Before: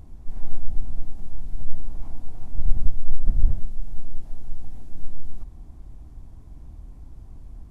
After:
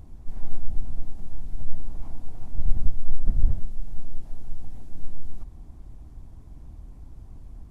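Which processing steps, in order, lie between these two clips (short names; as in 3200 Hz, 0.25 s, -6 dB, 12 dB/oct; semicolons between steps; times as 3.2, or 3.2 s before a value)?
harmonic-percussive split harmonic -3 dB; gain +1 dB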